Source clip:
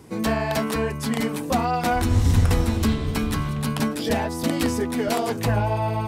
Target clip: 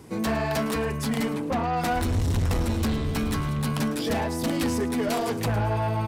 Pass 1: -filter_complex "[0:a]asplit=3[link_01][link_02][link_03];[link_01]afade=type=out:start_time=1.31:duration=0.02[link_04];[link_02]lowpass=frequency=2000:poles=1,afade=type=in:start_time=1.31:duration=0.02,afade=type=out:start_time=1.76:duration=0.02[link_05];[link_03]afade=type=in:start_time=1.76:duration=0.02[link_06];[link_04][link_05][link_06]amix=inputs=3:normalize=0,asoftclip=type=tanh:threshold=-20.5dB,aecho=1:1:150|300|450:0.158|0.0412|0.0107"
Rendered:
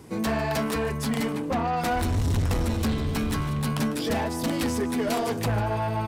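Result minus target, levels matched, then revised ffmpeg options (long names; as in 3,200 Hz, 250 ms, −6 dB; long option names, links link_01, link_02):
echo 41 ms late
-filter_complex "[0:a]asplit=3[link_01][link_02][link_03];[link_01]afade=type=out:start_time=1.31:duration=0.02[link_04];[link_02]lowpass=frequency=2000:poles=1,afade=type=in:start_time=1.31:duration=0.02,afade=type=out:start_time=1.76:duration=0.02[link_05];[link_03]afade=type=in:start_time=1.76:duration=0.02[link_06];[link_04][link_05][link_06]amix=inputs=3:normalize=0,asoftclip=type=tanh:threshold=-20.5dB,aecho=1:1:109|218|327:0.158|0.0412|0.0107"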